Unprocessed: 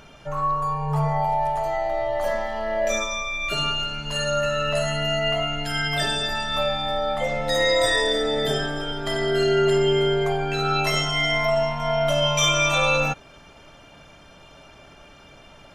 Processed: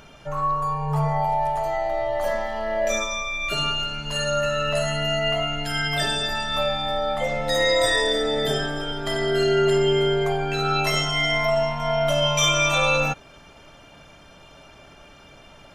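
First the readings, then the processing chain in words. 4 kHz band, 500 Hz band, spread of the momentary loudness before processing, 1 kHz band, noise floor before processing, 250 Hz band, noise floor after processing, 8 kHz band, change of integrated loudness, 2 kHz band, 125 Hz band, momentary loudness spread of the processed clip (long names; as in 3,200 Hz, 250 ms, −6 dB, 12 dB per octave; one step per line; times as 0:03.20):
0.0 dB, 0.0 dB, 7 LU, 0.0 dB, −49 dBFS, 0.0 dB, −49 dBFS, +0.5 dB, 0.0 dB, 0.0 dB, 0.0 dB, 7 LU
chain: high-shelf EQ 11,000 Hz +3 dB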